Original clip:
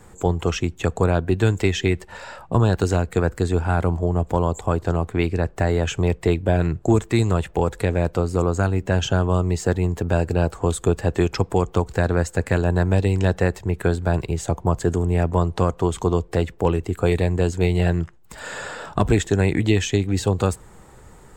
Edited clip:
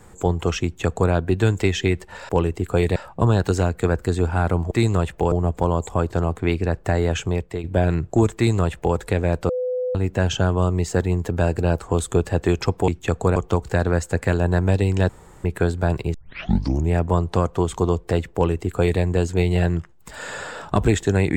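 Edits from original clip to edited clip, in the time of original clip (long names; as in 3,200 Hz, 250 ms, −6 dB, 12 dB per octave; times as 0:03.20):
0:00.64–0:01.12: duplicate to 0:11.60
0:05.88–0:06.36: fade out, to −12.5 dB
0:07.07–0:07.68: duplicate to 0:04.04
0:08.21–0:08.67: beep over 503 Hz −21 dBFS
0:13.33–0:13.68: fill with room tone
0:14.38: tape start 0.77 s
0:16.58–0:17.25: duplicate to 0:02.29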